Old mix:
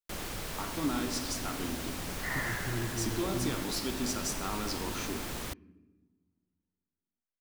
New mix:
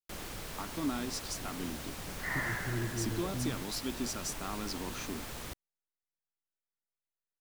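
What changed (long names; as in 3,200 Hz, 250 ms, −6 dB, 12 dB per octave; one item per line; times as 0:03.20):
speech: send off
first sound −4.0 dB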